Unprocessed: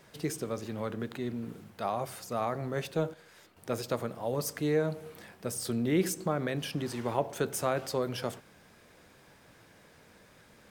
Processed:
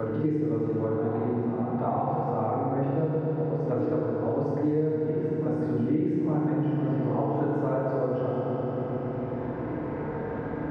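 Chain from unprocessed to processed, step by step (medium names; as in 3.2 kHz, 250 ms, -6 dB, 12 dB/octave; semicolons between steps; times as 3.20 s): low-pass 1 kHz 12 dB/octave; reverse echo 858 ms -10 dB; FDN reverb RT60 2.8 s, low-frequency decay 1.35×, high-frequency decay 0.85×, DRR -9.5 dB; three bands compressed up and down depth 100%; trim -5.5 dB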